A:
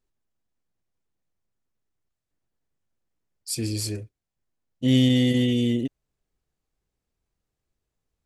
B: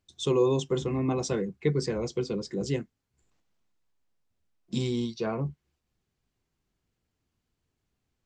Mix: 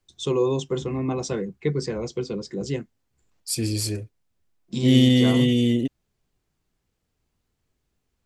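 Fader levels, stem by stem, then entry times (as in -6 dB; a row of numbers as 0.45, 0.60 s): +2.5, +1.5 dB; 0.00, 0.00 s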